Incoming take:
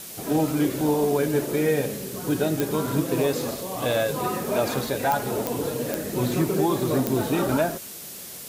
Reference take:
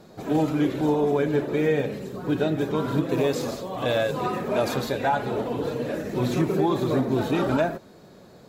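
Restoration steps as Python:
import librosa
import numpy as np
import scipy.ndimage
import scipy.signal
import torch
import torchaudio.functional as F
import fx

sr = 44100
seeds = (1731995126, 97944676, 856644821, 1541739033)

y = fx.fix_declick_ar(x, sr, threshold=10.0)
y = fx.noise_reduce(y, sr, print_start_s=7.89, print_end_s=8.39, reduce_db=8.0)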